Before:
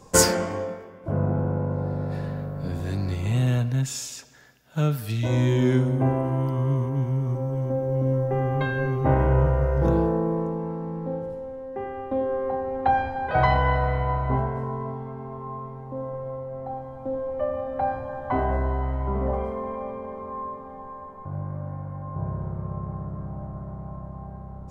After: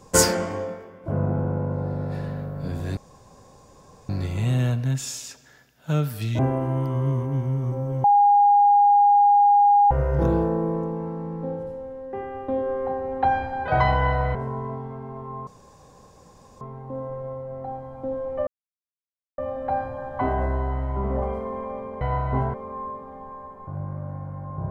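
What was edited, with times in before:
2.97 insert room tone 1.12 s
5.27–6.02 cut
7.67–9.54 bleep 816 Hz -12.5 dBFS
13.98–14.51 move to 20.12
15.63 insert room tone 1.14 s
17.49 insert silence 0.91 s

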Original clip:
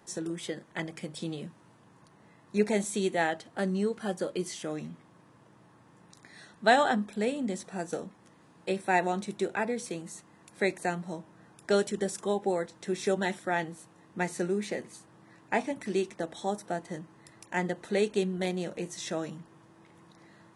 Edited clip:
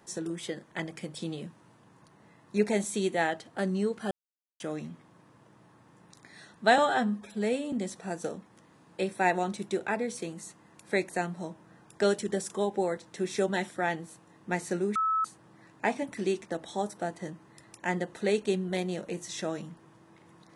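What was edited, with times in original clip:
4.11–4.6 mute
6.78–7.41 stretch 1.5×
14.64–14.93 bleep 1300 Hz -24 dBFS

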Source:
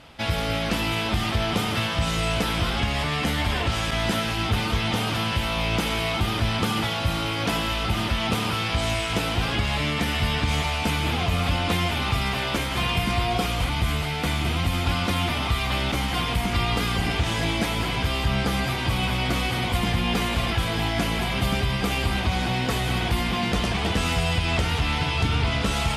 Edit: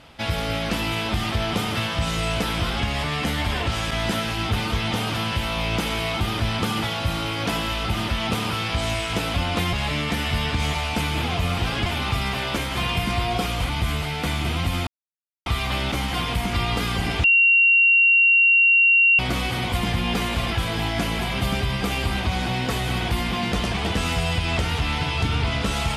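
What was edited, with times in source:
9.34–9.62 swap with 11.47–11.86
14.87–15.46 mute
17.24–19.19 bleep 2750 Hz -12.5 dBFS

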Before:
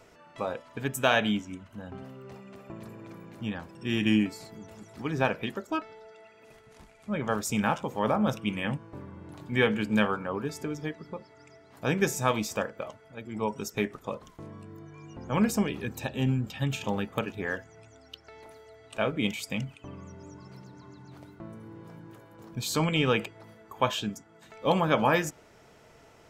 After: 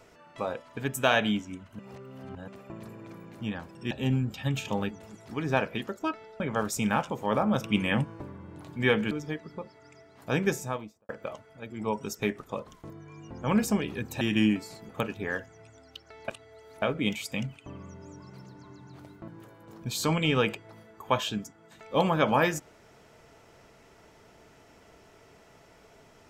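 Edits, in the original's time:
1.79–2.48 reverse
3.91–4.59 swap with 16.07–17.07
6.08–7.13 cut
8.37–8.95 gain +4.5 dB
9.84–10.66 cut
11.9–12.64 studio fade out
14.45–14.76 cut
18.46–19 reverse
21.46–21.99 cut

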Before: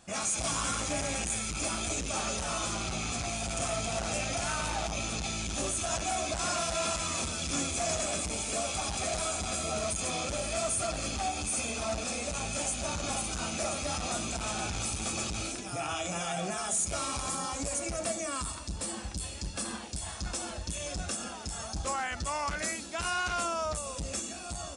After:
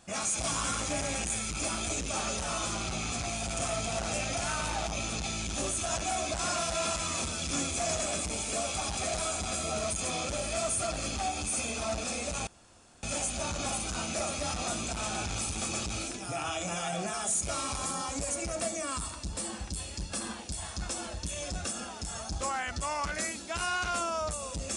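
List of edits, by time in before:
12.47 insert room tone 0.56 s

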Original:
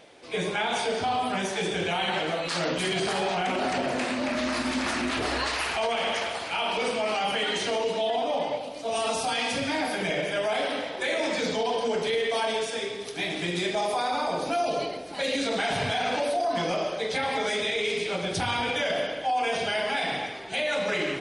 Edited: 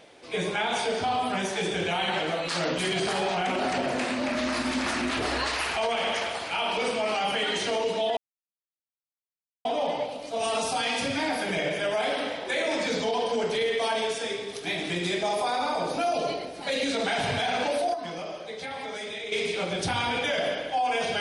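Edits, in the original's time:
8.17 insert silence 1.48 s
16.46–17.84 gain -8 dB

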